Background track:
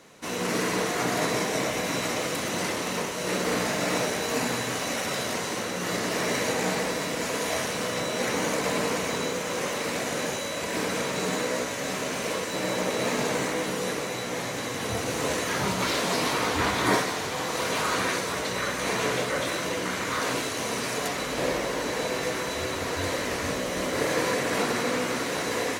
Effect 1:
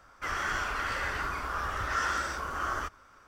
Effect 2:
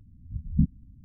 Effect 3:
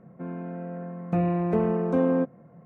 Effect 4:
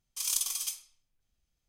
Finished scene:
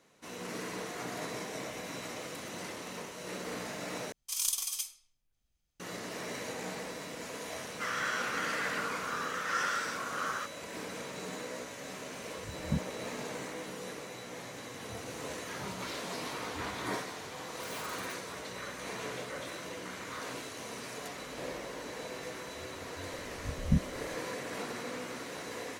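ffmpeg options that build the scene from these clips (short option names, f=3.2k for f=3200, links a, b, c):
-filter_complex "[4:a]asplit=2[a][b];[2:a]asplit=2[c][d];[0:a]volume=-13dB[e];[1:a]highpass=1.2k[f];[c]highpass=77[g];[b]aeval=exprs='(mod(23.7*val(0)+1,2)-1)/23.7':c=same[h];[e]asplit=2[i][j];[i]atrim=end=4.124[k];[a]atrim=end=1.68,asetpts=PTS-STARTPTS,volume=-1.5dB[l];[j]atrim=start=5.796[m];[f]atrim=end=3.27,asetpts=PTS-STARTPTS,volume=-0.5dB,afade=t=in:d=0.004:c=hsin,afade=t=out:st=3.266:d=0.004:c=hsin,adelay=7580[n];[g]atrim=end=1.04,asetpts=PTS-STARTPTS,volume=-9dB,afade=t=in:d=0.004:c=hsin,afade=t=out:st=1.036:d=0.004:c=hsin,adelay=12130[o];[h]atrim=end=1.68,asetpts=PTS-STARTPTS,volume=-15.5dB,afade=t=in:d=0.004:c=hsin,afade=t=out:st=1.676:d=0.004:c=hsin,adelay=17430[p];[d]atrim=end=1.04,asetpts=PTS-STARTPTS,volume=-4.5dB,afade=t=in:d=0.004:c=hsin,afade=t=out:st=1.036:d=0.004:c=hsin,adelay=23130[q];[k][l]acrossfade=d=0.004:c1=hsin:c2=hsin[r];[r][m]acrossfade=d=0.004:c1=hsin:c2=hsin[s];[s][n][o][p][q]amix=inputs=5:normalize=0"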